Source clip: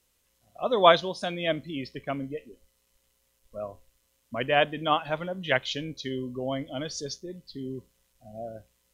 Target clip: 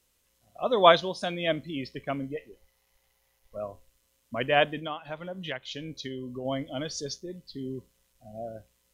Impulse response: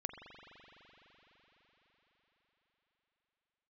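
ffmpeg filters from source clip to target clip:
-filter_complex "[0:a]asettb=1/sr,asplit=3[a][b][c];[a]atrim=end=2.364[d];[b]atrim=start=2.36:end=3.57,asetpts=PTS-STARTPTS,afade=t=in:d=0.004:c=qsin,afade=t=out:st=1.206:d=0.004:c=qsin,equalizer=f=250:t=o:w=0.33:g=-12,equalizer=f=800:t=o:w=0.33:g=11,equalizer=f=2k:t=o:w=0.33:g=7,equalizer=f=8k:t=o:w=0.33:g=-6[e];[c]atrim=start=3.566[f];[d][e]acrossfade=d=0.004:c1=hsin:c2=qsin[g];[g][f]acrossfade=d=0.004:c1=qsin:c2=hsin,asplit=3[h][i][j];[h]afade=t=out:st=4.79:d=0.02[k];[i]acompressor=threshold=-33dB:ratio=5,afade=t=in:st=4.79:d=0.02,afade=t=out:st=6.44:d=0.02[l];[j]afade=t=in:st=6.44:d=0.02[m];[k][l][m]amix=inputs=3:normalize=0"

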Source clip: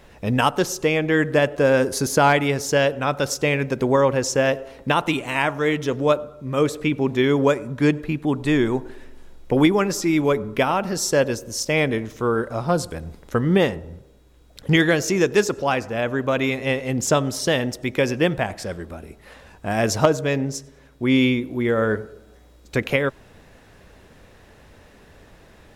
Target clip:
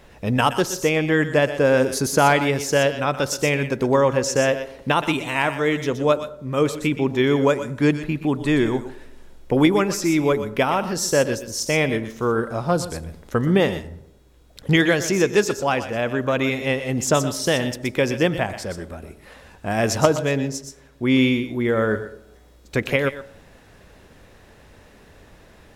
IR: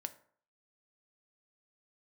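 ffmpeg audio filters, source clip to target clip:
-filter_complex "[0:a]asplit=2[a][b];[1:a]atrim=start_sample=2205,highshelf=f=3.3k:g=10.5,adelay=122[c];[b][c]afir=irnorm=-1:irlink=0,volume=-12dB[d];[a][d]amix=inputs=2:normalize=0"

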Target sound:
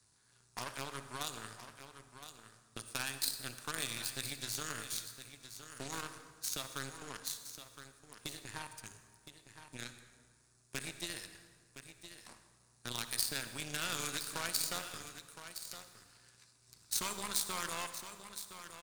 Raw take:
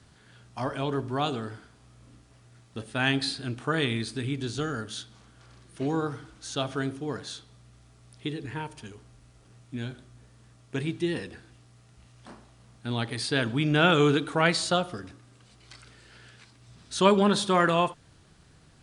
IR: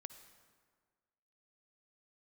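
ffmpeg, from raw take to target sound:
-filter_complex "[0:a]equalizer=f=100:t=o:w=0.33:g=6,equalizer=f=1k:t=o:w=0.33:g=6,equalizer=f=2k:t=o:w=0.33:g=-4,equalizer=f=3.15k:t=o:w=0.33:g=-11,acrossover=split=150|1400[a][b][c];[b]alimiter=limit=-17.5dB:level=0:latency=1[d];[a][d][c]amix=inputs=3:normalize=0,acrossover=split=1300|6100[e][f][g];[e]acompressor=threshold=-39dB:ratio=4[h];[f]acompressor=threshold=-43dB:ratio=4[i];[g]acompressor=threshold=-48dB:ratio=4[j];[h][i][j]amix=inputs=3:normalize=0,asplit=2[k][l];[l]asoftclip=type=tanh:threshold=-31.5dB,volume=-10dB[m];[k][m]amix=inputs=2:normalize=0,aeval=exprs='0.075*(cos(1*acos(clip(val(0)/0.075,-1,1)))-cos(1*PI/2))+0.0299*(cos(2*acos(clip(val(0)/0.075,-1,1)))-cos(2*PI/2))+0.00841*(cos(7*acos(clip(val(0)/0.075,-1,1)))-cos(7*PI/2))':c=same,tremolo=f=270:d=0.571,asoftclip=type=hard:threshold=-25dB,crystalizer=i=8:c=0,aeval=exprs='0.562*(cos(1*acos(clip(val(0)/0.562,-1,1)))-cos(1*PI/2))+0.0316*(cos(7*acos(clip(val(0)/0.562,-1,1)))-cos(7*PI/2))':c=same,aecho=1:1:1015:0.282[n];[1:a]atrim=start_sample=2205[o];[n][o]afir=irnorm=-1:irlink=0,volume=1.5dB"

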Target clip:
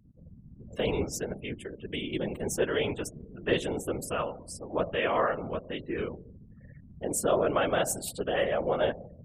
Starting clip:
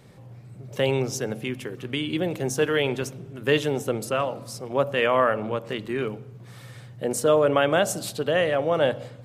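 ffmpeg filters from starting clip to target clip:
-af "aexciter=amount=2.4:drive=3.2:freq=7.6k,afftfilt=real='re*gte(hypot(re,im),0.0141)':imag='im*gte(hypot(re,im),0.0141)':win_size=1024:overlap=0.75,afftfilt=real='hypot(re,im)*cos(2*PI*random(0))':imag='hypot(re,im)*sin(2*PI*random(1))':win_size=512:overlap=0.75"

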